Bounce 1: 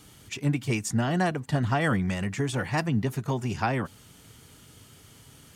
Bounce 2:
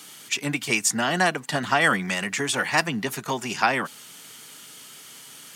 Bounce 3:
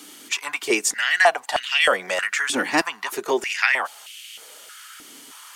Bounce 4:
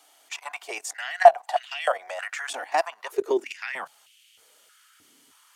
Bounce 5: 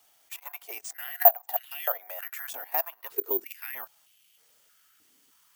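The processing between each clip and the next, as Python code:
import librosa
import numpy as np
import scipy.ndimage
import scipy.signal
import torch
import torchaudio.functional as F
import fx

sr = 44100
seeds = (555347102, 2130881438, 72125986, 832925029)

y1 = scipy.signal.sosfilt(scipy.signal.butter(4, 160.0, 'highpass', fs=sr, output='sos'), x)
y1 = fx.tilt_shelf(y1, sr, db=-7.0, hz=680.0)
y1 = y1 * librosa.db_to_amplitude(4.5)
y2 = fx.filter_held_highpass(y1, sr, hz=3.2, low_hz=280.0, high_hz=2700.0)
y3 = fx.filter_sweep_highpass(y2, sr, from_hz=700.0, to_hz=92.0, start_s=2.87, end_s=4.17, q=6.3)
y3 = fx.level_steps(y3, sr, step_db=13)
y3 = y3 * librosa.db_to_amplitude(-7.0)
y4 = (np.kron(y3[::3], np.eye(3)[0]) * 3)[:len(y3)]
y4 = y4 * librosa.db_to_amplitude(-9.5)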